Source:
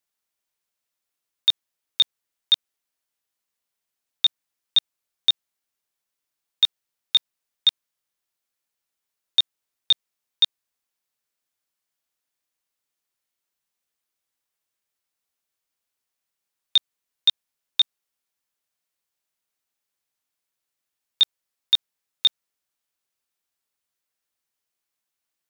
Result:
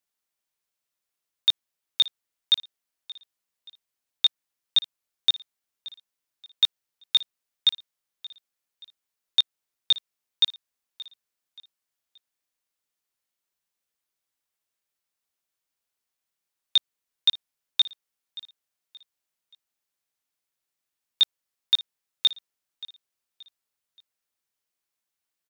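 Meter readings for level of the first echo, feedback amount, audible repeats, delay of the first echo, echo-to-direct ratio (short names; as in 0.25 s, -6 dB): -19.0 dB, 36%, 2, 0.577 s, -18.5 dB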